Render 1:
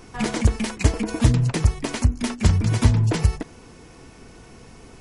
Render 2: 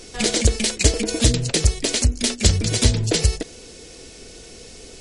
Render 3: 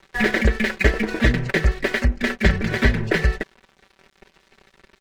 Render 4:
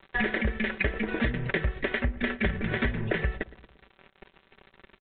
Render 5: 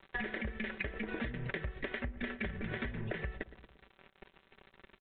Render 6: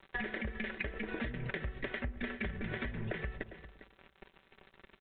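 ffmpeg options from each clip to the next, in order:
-af "equalizer=f=125:t=o:w=1:g=-8,equalizer=f=250:t=o:w=1:g=-3,equalizer=f=500:t=o:w=1:g=7,equalizer=f=1000:t=o:w=1:g=-12,equalizer=f=4000:t=o:w=1:g=9,equalizer=f=8000:t=o:w=1:g=9,volume=1.41"
-af "lowpass=f=1800:t=q:w=4.7,aeval=exprs='sgn(val(0))*max(abs(val(0))-0.0141,0)':c=same,aecho=1:1:5.2:0.59,volume=1.12"
-filter_complex "[0:a]acompressor=threshold=0.0631:ratio=6,aresample=8000,aeval=exprs='sgn(val(0))*max(abs(val(0))-0.00106,0)':c=same,aresample=44100,asplit=2[s0][s1];[s1]adelay=115,lowpass=f=1500:p=1,volume=0.126,asplit=2[s2][s3];[s3]adelay=115,lowpass=f=1500:p=1,volume=0.54,asplit=2[s4][s5];[s5]adelay=115,lowpass=f=1500:p=1,volume=0.54,asplit=2[s6][s7];[s7]adelay=115,lowpass=f=1500:p=1,volume=0.54,asplit=2[s8][s9];[s9]adelay=115,lowpass=f=1500:p=1,volume=0.54[s10];[s0][s2][s4][s6][s8][s10]amix=inputs=6:normalize=0"
-af "acompressor=threshold=0.0316:ratio=6,volume=0.596"
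-af "aecho=1:1:402:0.188"

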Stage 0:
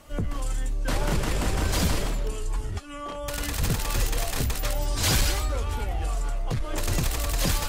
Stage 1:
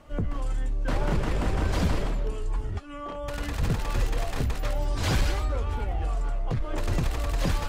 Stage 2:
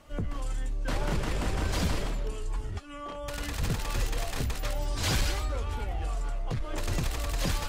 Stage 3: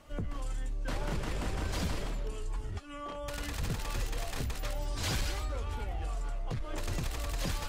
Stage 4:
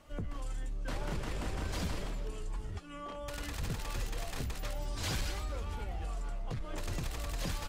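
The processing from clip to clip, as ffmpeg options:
-af "lowpass=f=1800:p=1"
-af "highshelf=f=2500:g=8.5,volume=0.631"
-af "acompressor=threshold=0.02:ratio=1.5,volume=0.841"
-filter_complex "[0:a]asplit=4[s0][s1][s2][s3];[s1]adelay=439,afreqshift=140,volume=0.0841[s4];[s2]adelay=878,afreqshift=280,volume=0.0313[s5];[s3]adelay=1317,afreqshift=420,volume=0.0115[s6];[s0][s4][s5][s6]amix=inputs=4:normalize=0,volume=0.75"

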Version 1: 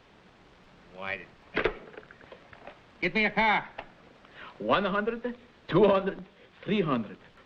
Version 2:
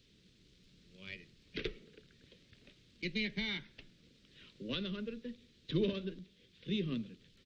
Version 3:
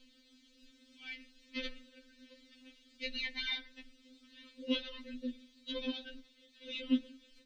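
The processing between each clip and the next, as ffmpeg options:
-af "firequalizer=gain_entry='entry(150,0);entry(460,-8);entry(760,-30);entry(1400,-17);entry(2100,-8);entry(3800,5)':delay=0.05:min_phase=1,volume=0.531"
-filter_complex "[0:a]acrossover=split=250[s0][s1];[s0]acompressor=mode=upward:threshold=0.00112:ratio=2.5[s2];[s2][s1]amix=inputs=2:normalize=0,afftfilt=real='re*3.46*eq(mod(b,12),0)':imag='im*3.46*eq(mod(b,12),0)':win_size=2048:overlap=0.75,volume=1.78"

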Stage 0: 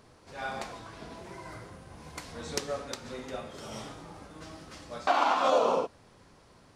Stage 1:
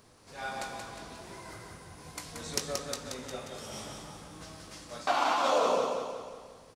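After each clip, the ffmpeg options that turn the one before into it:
-filter_complex "[0:a]highshelf=f=5000:g=10,asplit=2[s0][s1];[s1]adelay=20,volume=0.282[s2];[s0][s2]amix=inputs=2:normalize=0,asplit=2[s3][s4];[s4]aecho=0:1:179|358|537|716|895|1074:0.562|0.281|0.141|0.0703|0.0351|0.0176[s5];[s3][s5]amix=inputs=2:normalize=0,volume=0.668"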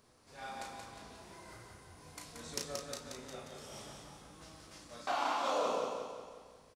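-filter_complex "[0:a]asplit=2[s0][s1];[s1]adelay=34,volume=0.562[s2];[s0][s2]amix=inputs=2:normalize=0,volume=0.398"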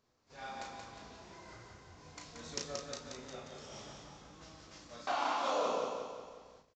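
-af "agate=range=0.316:threshold=0.00112:ratio=16:detection=peak,aresample=16000,aresample=44100"

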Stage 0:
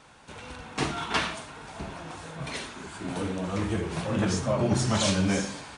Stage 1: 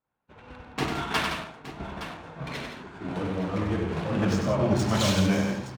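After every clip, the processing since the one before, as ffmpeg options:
-af "agate=range=0.0224:threshold=0.0141:ratio=3:detection=peak,adynamicsmooth=sensitivity=6.5:basefreq=2100,aecho=1:1:96|167|867:0.501|0.355|0.237"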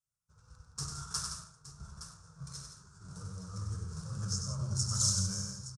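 -af "firequalizer=gain_entry='entry(140,0);entry(260,-28);entry(460,-18);entry(730,-25);entry(1300,-5);entry(2000,-29);entry(3100,-23);entry(5300,11);entry(9400,13);entry(15000,-19)':delay=0.05:min_phase=1,volume=0.501"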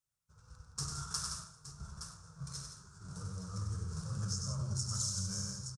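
-af "acompressor=threshold=0.02:ratio=6,aecho=1:1:130|260|390:0.0708|0.0368|0.0191,volume=1.12"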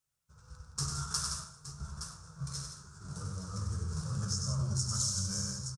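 -filter_complex "[0:a]asplit=2[s0][s1];[s1]adelay=14,volume=0.299[s2];[s0][s2]amix=inputs=2:normalize=0,volume=1.5"

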